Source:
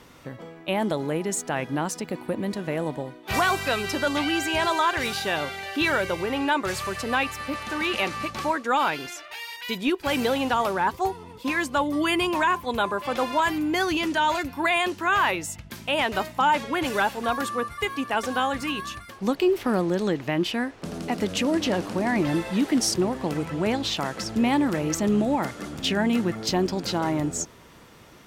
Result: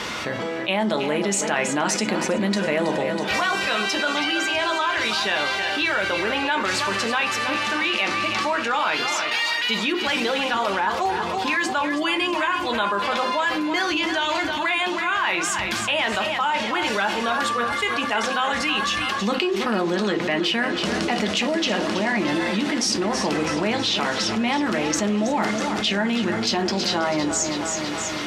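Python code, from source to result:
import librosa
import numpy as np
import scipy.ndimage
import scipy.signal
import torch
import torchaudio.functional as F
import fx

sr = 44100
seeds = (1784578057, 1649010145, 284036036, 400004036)

p1 = scipy.signal.sosfilt(scipy.signal.butter(2, 4500.0, 'lowpass', fs=sr, output='sos'), x)
p2 = fx.tilt_eq(p1, sr, slope=3.0)
p3 = fx.rider(p2, sr, range_db=10, speed_s=0.5)
p4 = p3 + fx.echo_feedback(p3, sr, ms=324, feedback_pct=51, wet_db=-11.5, dry=0)
p5 = fx.rev_fdn(p4, sr, rt60_s=0.3, lf_ratio=1.2, hf_ratio=0.6, size_ms=28.0, drr_db=5.5)
p6 = fx.env_flatten(p5, sr, amount_pct=70)
y = p6 * librosa.db_to_amplitude(-3.0)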